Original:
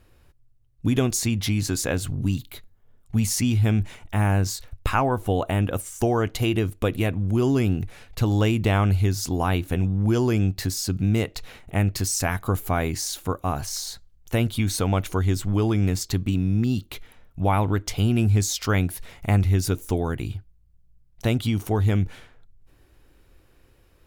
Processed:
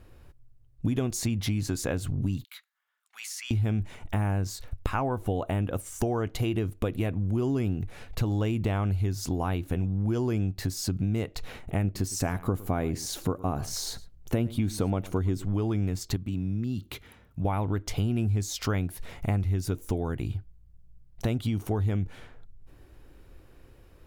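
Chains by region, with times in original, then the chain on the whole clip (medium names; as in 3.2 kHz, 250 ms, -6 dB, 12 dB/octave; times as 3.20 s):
2.44–3.51 s: high-pass 1.3 kHz 24 dB/octave + compression 3:1, threshold -32 dBFS + treble shelf 6 kHz -6 dB
11.84–15.45 s: peaking EQ 290 Hz +6 dB 2.6 oct + delay 110 ms -20.5 dB
16.16–17.45 s: compression 1.5:1, threshold -37 dBFS + high-pass 62 Hz + peaking EQ 650 Hz -5 dB 1 oct
whole clip: tilt shelf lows +3 dB, about 1.4 kHz; compression 3:1, threshold -29 dBFS; trim +1.5 dB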